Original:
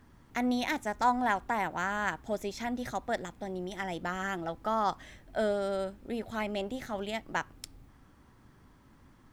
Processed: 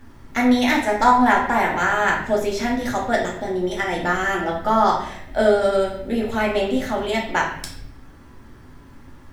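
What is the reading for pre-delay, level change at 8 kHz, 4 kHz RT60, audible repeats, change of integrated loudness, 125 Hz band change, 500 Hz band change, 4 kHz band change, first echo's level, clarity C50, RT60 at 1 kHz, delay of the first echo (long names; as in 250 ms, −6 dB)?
3 ms, +11.5 dB, 0.60 s, no echo audible, +13.0 dB, +11.0 dB, +13.5 dB, +12.0 dB, no echo audible, 5.0 dB, 0.65 s, no echo audible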